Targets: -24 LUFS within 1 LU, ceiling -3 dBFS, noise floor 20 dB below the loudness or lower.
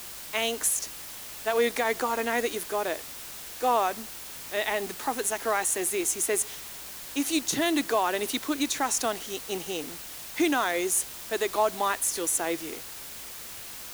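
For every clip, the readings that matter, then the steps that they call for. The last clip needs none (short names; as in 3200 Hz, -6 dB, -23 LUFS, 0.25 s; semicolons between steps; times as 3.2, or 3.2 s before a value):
hum 50 Hz; harmonics up to 150 Hz; hum level -60 dBFS; noise floor -41 dBFS; noise floor target -48 dBFS; loudness -28.0 LUFS; peak -13.0 dBFS; loudness target -24.0 LUFS
-> de-hum 50 Hz, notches 3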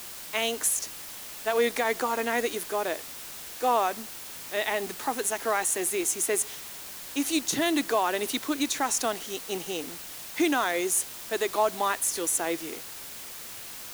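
hum none; noise floor -41 dBFS; noise floor target -48 dBFS
-> denoiser 7 dB, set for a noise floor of -41 dBFS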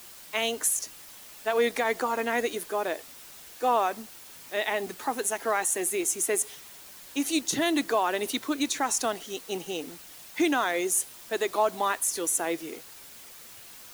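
noise floor -48 dBFS; loudness -28.0 LUFS; peak -13.5 dBFS; loudness target -24.0 LUFS
-> gain +4 dB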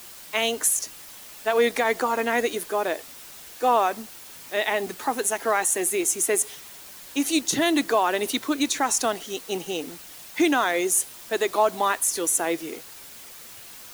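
loudness -24.0 LUFS; peak -9.5 dBFS; noise floor -44 dBFS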